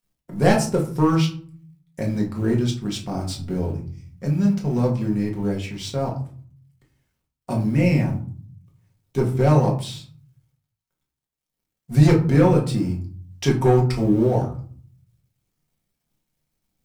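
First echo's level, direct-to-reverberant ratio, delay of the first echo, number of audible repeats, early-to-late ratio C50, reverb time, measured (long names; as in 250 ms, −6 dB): no echo audible, −1.5 dB, no echo audible, no echo audible, 9.0 dB, 0.50 s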